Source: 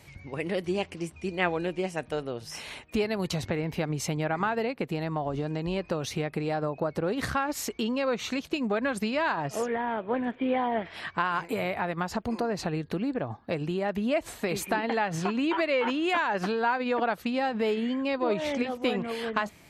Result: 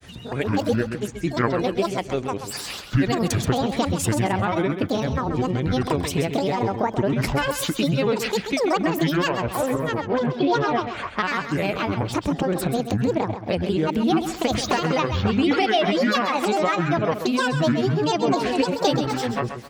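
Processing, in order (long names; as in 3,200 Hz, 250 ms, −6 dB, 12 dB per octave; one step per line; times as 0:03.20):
dynamic equaliser 1,200 Hz, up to −6 dB, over −39 dBFS, Q 0.82
granular cloud, grains 20 per second, spray 11 ms, pitch spread up and down by 12 semitones
on a send: repeating echo 132 ms, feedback 28%, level −9 dB
on the sum: level +9 dB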